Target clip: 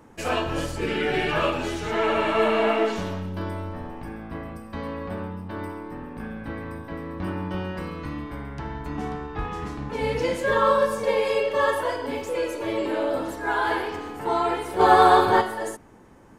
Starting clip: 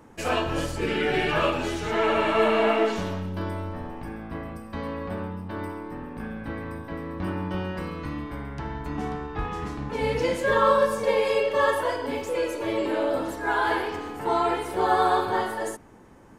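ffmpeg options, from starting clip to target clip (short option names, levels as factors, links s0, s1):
-filter_complex "[0:a]asplit=3[s0][s1][s2];[s0]afade=t=out:st=14.79:d=0.02[s3];[s1]acontrast=79,afade=t=in:st=14.79:d=0.02,afade=t=out:st=15.4:d=0.02[s4];[s2]afade=t=in:st=15.4:d=0.02[s5];[s3][s4][s5]amix=inputs=3:normalize=0"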